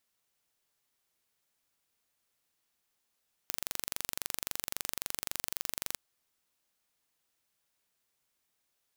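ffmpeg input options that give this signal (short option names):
-f lavfi -i "aevalsrc='0.473*eq(mod(n,1861),0)':d=2.47:s=44100"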